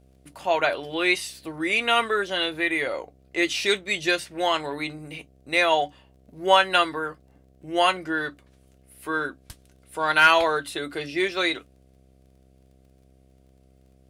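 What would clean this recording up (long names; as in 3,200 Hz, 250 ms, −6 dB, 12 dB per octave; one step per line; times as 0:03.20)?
click removal
hum removal 65.6 Hz, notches 11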